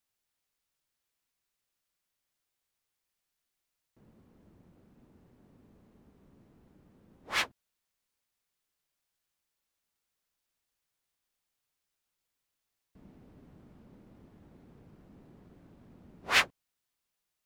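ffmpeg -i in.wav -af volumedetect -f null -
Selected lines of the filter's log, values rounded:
mean_volume: -44.2 dB
max_volume: -10.3 dB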